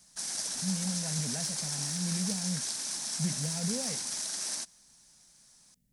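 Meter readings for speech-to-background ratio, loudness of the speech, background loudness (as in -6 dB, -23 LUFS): -4.5 dB, -37.0 LUFS, -32.5 LUFS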